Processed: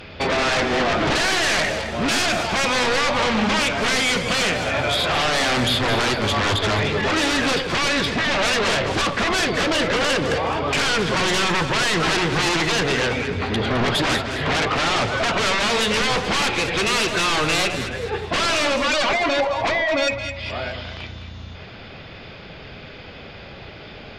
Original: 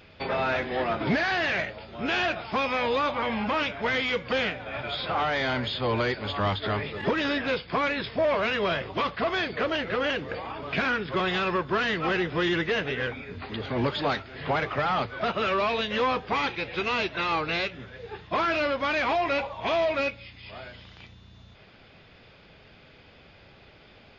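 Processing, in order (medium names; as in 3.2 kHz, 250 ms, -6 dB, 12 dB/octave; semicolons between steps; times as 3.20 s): 18.76–20.36 s: spectral contrast enhancement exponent 1.7; sine folder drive 12 dB, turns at -15 dBFS; echo whose repeats swap between lows and highs 106 ms, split 850 Hz, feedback 61%, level -5.5 dB; trim -2.5 dB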